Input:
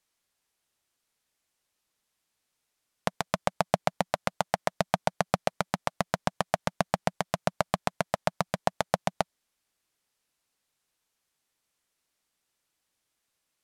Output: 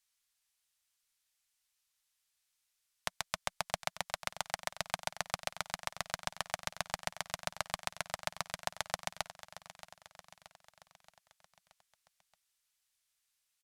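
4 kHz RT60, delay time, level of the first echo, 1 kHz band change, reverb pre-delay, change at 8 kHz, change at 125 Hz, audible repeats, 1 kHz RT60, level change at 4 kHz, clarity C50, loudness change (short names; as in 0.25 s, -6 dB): none, 0.626 s, -14.0 dB, -10.5 dB, none, -0.5 dB, -15.0 dB, 4, none, -1.5 dB, none, -8.5 dB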